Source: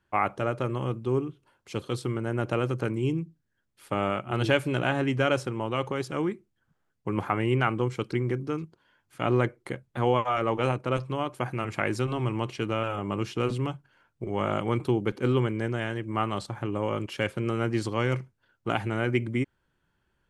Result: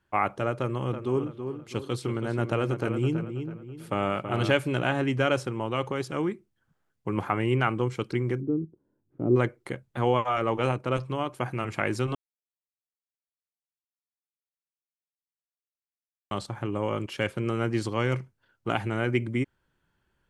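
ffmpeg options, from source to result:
-filter_complex "[0:a]asettb=1/sr,asplit=3[s0][s1][s2];[s0]atrim=end=0.594[s3];[s1]atrim=start=0.59:end=4.52,asetpts=PTS-STARTPTS,afade=t=in:d=0.004:c=qsin,afade=t=out:st=3.926:d=0.004:c=qsin,asplit=2[s4][s5];[s5]adelay=327,lowpass=f=3100:p=1,volume=0.422,asplit=2[s6][s7];[s7]adelay=327,lowpass=f=3100:p=1,volume=0.39,asplit=2[s8][s9];[s9]adelay=327,lowpass=f=3100:p=1,volume=0.39,asplit=2[s10][s11];[s11]adelay=327,lowpass=f=3100:p=1,volume=0.39[s12];[s4][s6][s8][s10][s12]amix=inputs=5:normalize=0,atrim=end_sample=173313[s13];[s2]atrim=start=4.516[s14];[s3][s13]acrossfade=d=0.004:c1=hsin:c2=qsin[s15];[s15][s14]acrossfade=d=0.004:c1=qsin:c2=hsin,asplit=3[s16][s17][s18];[s16]afade=t=out:st=8.4:d=0.02[s19];[s17]lowpass=f=340:t=q:w=2,afade=t=in:st=8.4:d=0.02,afade=t=out:st=9.35:d=0.02[s20];[s18]afade=t=in:st=9.35:d=0.02[s21];[s19][s20][s21]amix=inputs=3:normalize=0,asplit=3[s22][s23][s24];[s22]atrim=end=12.15,asetpts=PTS-STARTPTS,afade=t=out:st=12.146:d=0.004:c=hsin[s25];[s23]atrim=start=12.15:end=16.31,asetpts=PTS-STARTPTS,volume=0[s26];[s24]atrim=start=16.31,asetpts=PTS-STARTPTS,afade=t=in:d=0.004:c=hsin[s27];[s25][s26][s27]concat=n=3:v=0:a=1"

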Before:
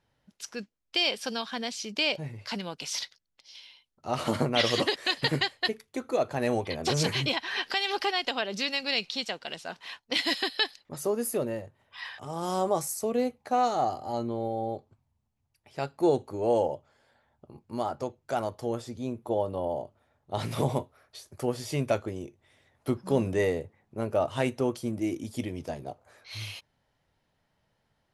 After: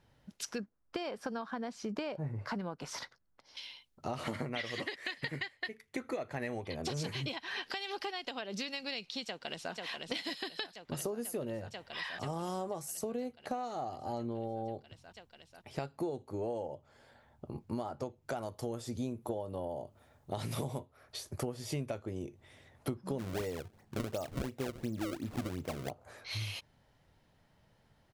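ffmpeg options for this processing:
-filter_complex "[0:a]asettb=1/sr,asplit=3[s0][s1][s2];[s0]atrim=end=0.584[s3];[s1]atrim=start=0.58:end=3.57,asetpts=PTS-STARTPTS,afade=t=in:d=0.004:c=qsin,afade=t=out:st=2.986:d=0.004:c=qsin,highshelf=f=2000:t=q:w=1.5:g=-12.5[s4];[s2]atrim=start=3.566[s5];[s3][s4]acrossfade=d=0.004:c1=hsin:c2=qsin[s6];[s6][s5]acrossfade=d=0.004:c1=qsin:c2=hsin,asettb=1/sr,asplit=3[s7][s8][s9];[s7]atrim=end=4.234[s10];[s8]atrim=start=4.23:end=6.62,asetpts=PTS-STARTPTS,afade=t=in:d=0.004:c=qsin,afade=t=out:st=2.386:d=0.004:c=qsin,equalizer=f=2000:t=o:w=0.58:g=12[s11];[s9]atrim=start=6.616[s12];[s10][s11]acrossfade=d=0.004:c1=hsin:c2=qsin[s13];[s13][s12]acrossfade=d=0.004:c1=qsin:c2=hsin,asplit=2[s14][s15];[s15]afade=t=in:st=9.25:d=0.01,afade=t=out:st=9.73:d=0.01,aecho=0:1:490|980|1470|1960|2450|2940|3430|3920|4410|4900|5390|5880:0.375837|0.319462|0.271543|0.230811|0.196189|0.166761|0.141747|0.120485|0.102412|0.0870503|0.0739928|0.0628939[s16];[s14][s16]amix=inputs=2:normalize=0,asettb=1/sr,asplit=3[s17][s18][s19];[s17]atrim=end=18.424[s20];[s18]atrim=start=18.42:end=20.8,asetpts=PTS-STARTPTS,afade=t=in:d=0.004:c=qsin,afade=t=out:st=2.376:d=0.004:c=qsin,highshelf=f=5200:g=8.5[s21];[s19]atrim=start=20.796[s22];[s20][s21]acrossfade=d=0.004:c1=hsin:c2=qsin[s23];[s23][s22]acrossfade=d=0.004:c1=qsin:c2=hsin,asplit=3[s24][s25][s26];[s24]afade=t=out:st=23.18:d=0.02[s27];[s25]acrusher=samples=30:mix=1:aa=0.000001:lfo=1:lforange=48:lforate=2.8,afade=t=in:st=23.18:d=0.02,afade=t=out:st=25.89:d=0.02[s28];[s26]afade=t=in:st=25.89:d=0.02[s29];[s27][s28][s29]amix=inputs=3:normalize=0,acompressor=threshold=0.01:ratio=10,lowshelf=f=370:g=4.5,volume=1.5"

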